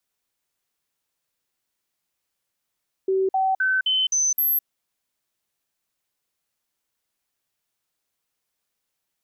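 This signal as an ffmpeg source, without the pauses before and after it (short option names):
-f lavfi -i "aevalsrc='0.126*clip(min(mod(t,0.26),0.21-mod(t,0.26))/0.005,0,1)*sin(2*PI*382*pow(2,floor(t/0.26)/1)*mod(t,0.26))':d=1.56:s=44100"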